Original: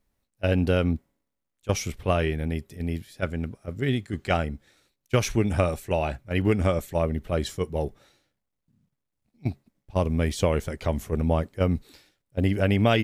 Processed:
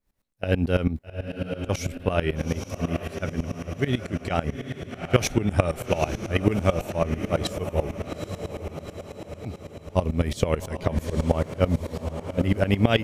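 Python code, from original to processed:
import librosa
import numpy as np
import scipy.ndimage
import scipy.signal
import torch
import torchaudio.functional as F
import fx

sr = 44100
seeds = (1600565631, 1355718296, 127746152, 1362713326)

p1 = x + fx.echo_diffused(x, sr, ms=815, feedback_pct=58, wet_db=-8.0, dry=0)
p2 = fx.tremolo_decay(p1, sr, direction='swelling', hz=9.1, depth_db=18)
y = p2 * librosa.db_to_amplitude(6.0)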